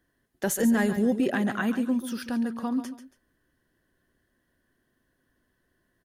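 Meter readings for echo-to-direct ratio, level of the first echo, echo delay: -10.5 dB, -11.0 dB, 0.139 s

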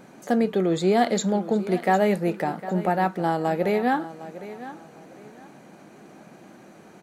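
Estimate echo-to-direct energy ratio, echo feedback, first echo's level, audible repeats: -14.5 dB, 27%, -15.0 dB, 2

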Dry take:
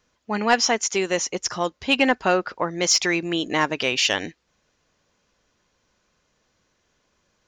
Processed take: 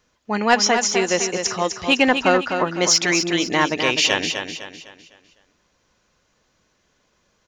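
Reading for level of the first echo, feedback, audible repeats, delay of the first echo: -7.0 dB, 39%, 4, 0.253 s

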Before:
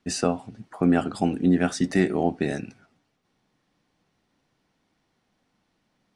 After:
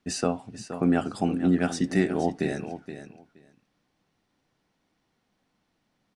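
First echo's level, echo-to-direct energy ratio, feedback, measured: -11.0 dB, -11.0 dB, 15%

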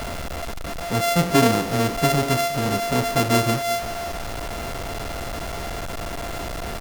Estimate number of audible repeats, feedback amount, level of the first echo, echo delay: 1, 17%, -19.5 dB, 0.367 s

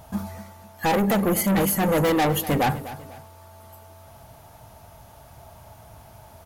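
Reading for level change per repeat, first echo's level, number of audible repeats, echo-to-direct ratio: -9.0 dB, -15.0 dB, 2, -14.5 dB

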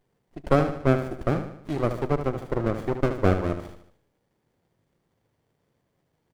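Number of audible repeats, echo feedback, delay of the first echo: 5, 48%, 75 ms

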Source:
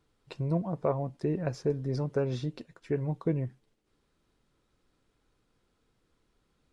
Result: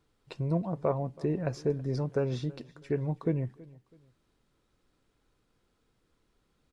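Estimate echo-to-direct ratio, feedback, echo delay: -21.5 dB, 33%, 0.326 s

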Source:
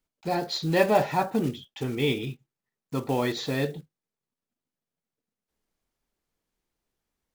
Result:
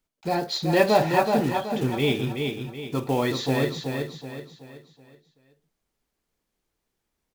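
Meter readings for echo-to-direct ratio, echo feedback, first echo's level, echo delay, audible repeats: -4.0 dB, 40%, -5.0 dB, 0.376 s, 4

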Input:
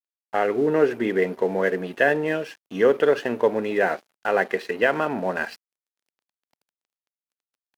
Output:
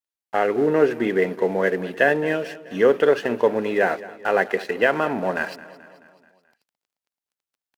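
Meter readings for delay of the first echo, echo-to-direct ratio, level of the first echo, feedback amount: 0.216 s, -16.5 dB, -18.0 dB, 56%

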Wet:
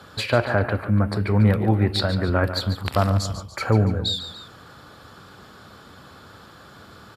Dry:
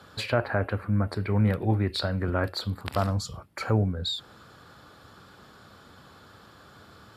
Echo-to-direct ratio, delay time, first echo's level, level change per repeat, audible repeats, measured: -10.0 dB, 0.144 s, -11.0 dB, -6.0 dB, 2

